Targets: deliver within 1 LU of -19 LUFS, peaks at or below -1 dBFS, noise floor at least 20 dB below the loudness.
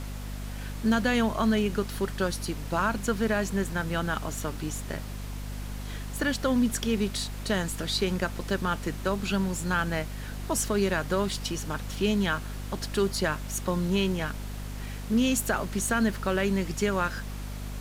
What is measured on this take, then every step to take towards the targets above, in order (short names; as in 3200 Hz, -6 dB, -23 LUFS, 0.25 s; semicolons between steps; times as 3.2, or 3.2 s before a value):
hum 50 Hz; harmonics up to 250 Hz; hum level -34 dBFS; noise floor -37 dBFS; noise floor target -49 dBFS; loudness -29.0 LUFS; peak -13.0 dBFS; loudness target -19.0 LUFS
-> de-hum 50 Hz, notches 5; denoiser 12 dB, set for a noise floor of -37 dBFS; gain +10 dB